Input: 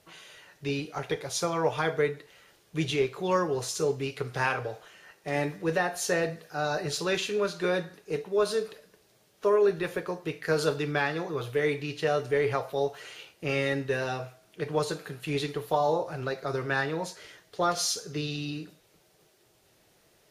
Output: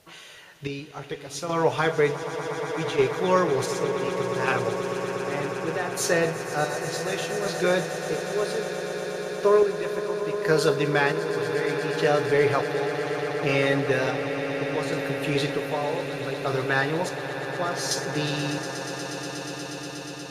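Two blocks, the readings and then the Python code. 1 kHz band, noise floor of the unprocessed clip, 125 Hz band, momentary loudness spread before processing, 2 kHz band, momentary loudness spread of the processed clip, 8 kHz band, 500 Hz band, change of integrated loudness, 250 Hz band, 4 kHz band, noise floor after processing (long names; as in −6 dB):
+4.0 dB, −64 dBFS, +4.0 dB, 11 LU, +5.0 dB, 11 LU, +2.5 dB, +4.5 dB, +3.5 dB, +4.5 dB, +3.0 dB, −39 dBFS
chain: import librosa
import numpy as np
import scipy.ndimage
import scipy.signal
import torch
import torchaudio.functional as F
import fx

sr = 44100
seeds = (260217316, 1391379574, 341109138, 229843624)

y = fx.chopper(x, sr, hz=0.67, depth_pct=60, duty_pct=45)
y = fx.echo_swell(y, sr, ms=120, loudest=8, wet_db=-14)
y = y * 10.0 ** (4.5 / 20.0)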